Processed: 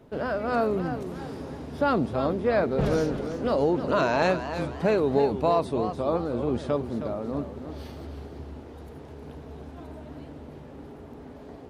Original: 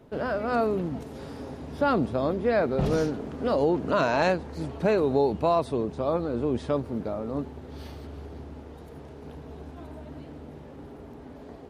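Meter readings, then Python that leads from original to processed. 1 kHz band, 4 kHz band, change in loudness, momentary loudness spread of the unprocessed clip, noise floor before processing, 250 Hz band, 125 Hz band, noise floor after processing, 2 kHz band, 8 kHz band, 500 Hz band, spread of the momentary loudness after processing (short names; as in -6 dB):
+0.5 dB, +0.5 dB, 0.0 dB, 20 LU, -45 dBFS, +0.5 dB, +0.5 dB, -44 dBFS, +0.5 dB, n/a, +0.5 dB, 20 LU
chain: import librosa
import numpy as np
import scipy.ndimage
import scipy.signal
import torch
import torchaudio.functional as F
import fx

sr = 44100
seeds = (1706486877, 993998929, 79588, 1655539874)

y = fx.echo_warbled(x, sr, ms=319, feedback_pct=41, rate_hz=2.8, cents=143, wet_db=-10.0)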